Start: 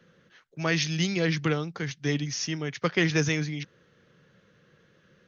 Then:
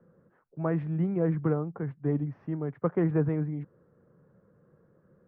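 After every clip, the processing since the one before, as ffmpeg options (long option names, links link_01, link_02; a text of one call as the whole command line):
ffmpeg -i in.wav -af "lowpass=frequency=1100:width=0.5412,lowpass=frequency=1100:width=1.3066" out.wav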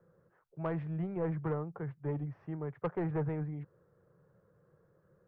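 ffmpeg -i in.wav -af "asoftclip=type=tanh:threshold=-21dB,equalizer=frequency=240:width=2.3:gain=-13,volume=-2.5dB" out.wav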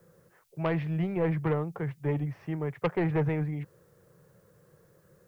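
ffmpeg -i in.wav -af "aexciter=amount=3.5:drive=5.3:freq=2000,volume=6.5dB" out.wav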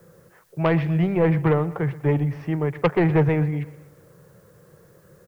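ffmpeg -i in.wav -af "aecho=1:1:122|244|366|488:0.126|0.0642|0.0327|0.0167,volume=8.5dB" out.wav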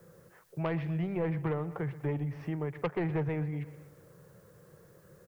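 ffmpeg -i in.wav -af "acompressor=threshold=-30dB:ratio=2,volume=-5dB" out.wav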